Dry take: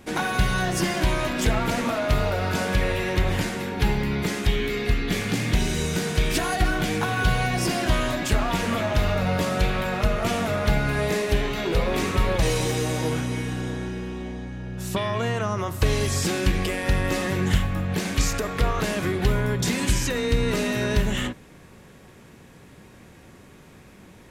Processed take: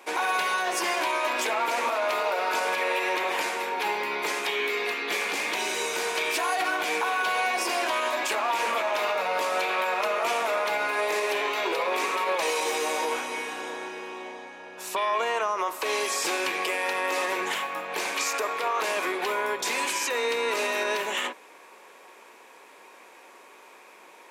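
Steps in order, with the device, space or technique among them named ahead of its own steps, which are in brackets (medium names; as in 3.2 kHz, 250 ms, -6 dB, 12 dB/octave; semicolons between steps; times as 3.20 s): laptop speaker (high-pass 400 Hz 24 dB/octave; peaking EQ 980 Hz +9 dB 0.51 oct; peaking EQ 2.4 kHz +7 dB 0.24 oct; peak limiter -17.5 dBFS, peak gain reduction 7.5 dB)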